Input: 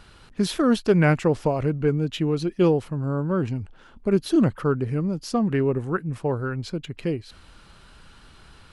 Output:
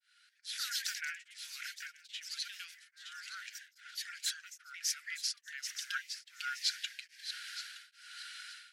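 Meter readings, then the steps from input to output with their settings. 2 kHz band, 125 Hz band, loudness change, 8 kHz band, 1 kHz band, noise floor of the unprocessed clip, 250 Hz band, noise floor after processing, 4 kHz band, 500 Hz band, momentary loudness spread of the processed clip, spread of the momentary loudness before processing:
-6.5 dB, under -40 dB, -16.0 dB, +3.5 dB, -18.5 dB, -51 dBFS, under -40 dB, -72 dBFS, +0.5 dB, under -40 dB, 13 LU, 10 LU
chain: fade-in on the opening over 1.22 s; dynamic bell 4.4 kHz, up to +4 dB, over -48 dBFS, Q 0.7; compression 12:1, threshold -33 dBFS, peak gain reduction 19 dB; rippled Chebyshev high-pass 1.4 kHz, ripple 3 dB; ever faster or slower copies 179 ms, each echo +2 st, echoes 3; feedback echo behind a high-pass 919 ms, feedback 35%, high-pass 3 kHz, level -11 dB; tremolo of two beating tones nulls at 1.2 Hz; trim +9.5 dB

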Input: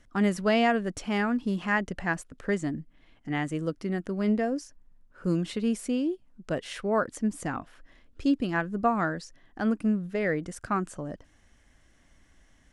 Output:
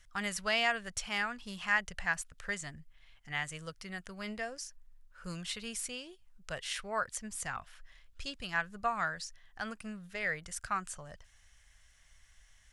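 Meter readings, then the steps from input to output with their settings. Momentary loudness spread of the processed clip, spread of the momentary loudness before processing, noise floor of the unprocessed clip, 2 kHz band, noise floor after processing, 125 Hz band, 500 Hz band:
14 LU, 10 LU, -62 dBFS, -1.0 dB, -64 dBFS, -14.0 dB, -13.0 dB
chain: amplifier tone stack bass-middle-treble 10-0-10; trim +4 dB

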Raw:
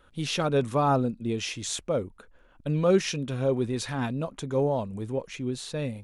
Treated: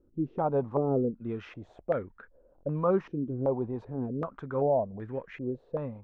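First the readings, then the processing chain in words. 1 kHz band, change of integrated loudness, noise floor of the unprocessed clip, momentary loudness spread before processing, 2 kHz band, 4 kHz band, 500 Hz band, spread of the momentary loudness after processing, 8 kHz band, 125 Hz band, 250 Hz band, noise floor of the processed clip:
-4.0 dB, -3.5 dB, -58 dBFS, 9 LU, -11.0 dB, under -25 dB, -2.0 dB, 11 LU, under -35 dB, -5.5 dB, -3.5 dB, -63 dBFS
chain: buffer glitch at 2.56 s, samples 1024, times 2; step-sequenced low-pass 2.6 Hz 340–1700 Hz; trim -6 dB

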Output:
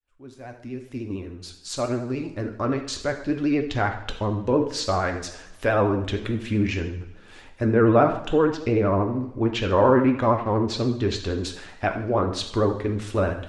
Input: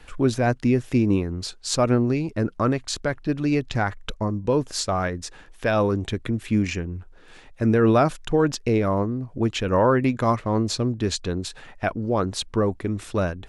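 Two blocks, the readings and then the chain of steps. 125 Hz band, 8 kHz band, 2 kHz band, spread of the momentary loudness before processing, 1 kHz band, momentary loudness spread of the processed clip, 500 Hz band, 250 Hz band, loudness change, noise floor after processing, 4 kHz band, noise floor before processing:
-2.0 dB, -5.5 dB, 0.0 dB, 9 LU, +0.5 dB, 15 LU, +0.5 dB, -1.5 dB, -0.5 dB, -48 dBFS, -1.5 dB, -48 dBFS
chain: fade-in on the opening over 4.17 s; peaking EQ 160 Hz -7 dB 0.47 oct; low-pass that closes with the level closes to 1.9 kHz, closed at -17.5 dBFS; two-slope reverb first 0.65 s, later 1.7 s, DRR 3.5 dB; vibrato 13 Hz 67 cents

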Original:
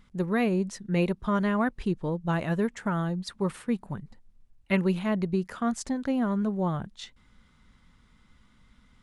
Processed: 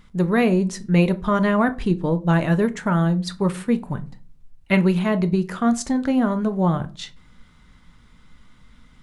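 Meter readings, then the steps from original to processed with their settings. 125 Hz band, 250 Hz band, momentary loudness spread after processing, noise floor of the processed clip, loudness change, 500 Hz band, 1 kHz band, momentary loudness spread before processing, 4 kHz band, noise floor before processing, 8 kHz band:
+9.0 dB, +7.5 dB, 6 LU, -53 dBFS, +7.5 dB, +7.0 dB, +7.0 dB, 7 LU, +7.5 dB, -62 dBFS, +7.5 dB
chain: simulated room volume 170 m³, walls furnished, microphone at 0.49 m; trim +7 dB

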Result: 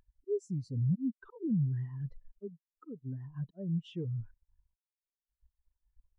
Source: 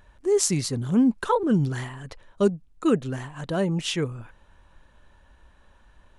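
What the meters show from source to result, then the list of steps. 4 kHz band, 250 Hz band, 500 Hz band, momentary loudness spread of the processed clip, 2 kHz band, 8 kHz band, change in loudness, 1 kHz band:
-26.0 dB, -12.5 dB, -16.0 dB, 16 LU, under -25 dB, under -30 dB, -11.5 dB, under -30 dB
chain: slow attack 784 ms; waveshaping leveller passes 3; compression 4:1, threshold -31 dBFS, peak gain reduction 10.5 dB; spectral contrast expander 2.5:1; trim -3.5 dB

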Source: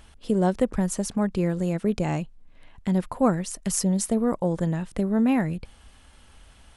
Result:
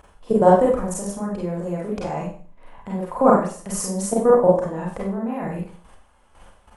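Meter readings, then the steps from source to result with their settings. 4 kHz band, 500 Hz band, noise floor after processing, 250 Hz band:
-3.0 dB, +9.0 dB, -55 dBFS, -0.5 dB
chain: graphic EQ 500/1000/4000 Hz +7/+10/-6 dB; level held to a coarse grid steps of 16 dB; Schroeder reverb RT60 0.43 s, combs from 31 ms, DRR -4.5 dB

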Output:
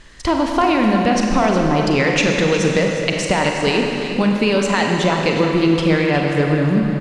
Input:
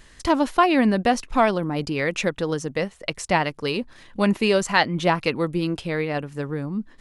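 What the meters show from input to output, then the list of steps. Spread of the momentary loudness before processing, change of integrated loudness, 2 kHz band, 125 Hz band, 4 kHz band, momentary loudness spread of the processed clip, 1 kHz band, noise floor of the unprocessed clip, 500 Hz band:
10 LU, +6.0 dB, +5.5 dB, +9.0 dB, +6.5 dB, 3 LU, +3.5 dB, -51 dBFS, +6.0 dB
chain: low-pass 7.3 kHz 12 dB/octave; level rider gain up to 9 dB; peak limiter -8.5 dBFS, peak gain reduction 7.5 dB; compression, threshold -19 dBFS, peak gain reduction 7 dB; on a send: delay 363 ms -10.5 dB; on the sum: Schroeder reverb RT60 2.8 s, combs from 33 ms, DRR 1.5 dB; trim +5 dB; Nellymoser 88 kbps 44.1 kHz

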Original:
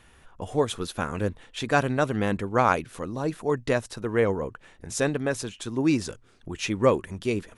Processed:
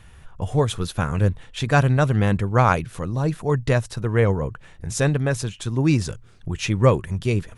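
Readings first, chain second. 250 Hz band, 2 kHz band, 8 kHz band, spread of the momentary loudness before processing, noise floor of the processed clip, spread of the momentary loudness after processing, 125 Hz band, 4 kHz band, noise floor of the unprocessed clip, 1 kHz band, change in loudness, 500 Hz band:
+3.5 dB, +3.0 dB, +3.0 dB, 12 LU, -48 dBFS, 11 LU, +12.5 dB, +3.0 dB, -56 dBFS, +2.5 dB, +5.0 dB, +2.0 dB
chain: resonant low shelf 190 Hz +8 dB, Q 1.5; trim +3 dB

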